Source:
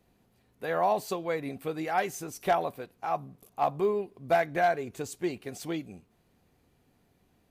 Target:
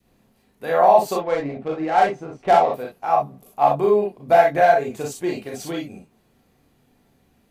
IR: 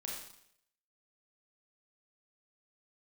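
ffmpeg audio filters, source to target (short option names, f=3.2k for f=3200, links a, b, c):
-filter_complex "[0:a]adynamicequalizer=threshold=0.0141:dfrequency=680:dqfactor=1.2:tfrequency=680:tqfactor=1.2:attack=5:release=100:ratio=0.375:range=3.5:mode=boostabove:tftype=bell,asettb=1/sr,asplit=3[a][b][c];[a]atrim=end=1.154[d];[b]atrim=start=1.15:end=2.74,asetpts=PTS-STARTPTS,afade=t=in:d=0.004:c=qsin,afade=t=out:st=1.586:d=0.004:c=qsin,adynamicsmooth=sensitivity=3.5:basefreq=1.4k[e];[c]atrim=start=2.736[f];[d][e]acrossfade=d=0.004:c1=hsin:c2=qsin[g];[g][f]acrossfade=d=0.004:c1=qsin:c2=hsin[h];[1:a]atrim=start_sample=2205,atrim=end_sample=3087[i];[h][i]afir=irnorm=-1:irlink=0,volume=8.5dB"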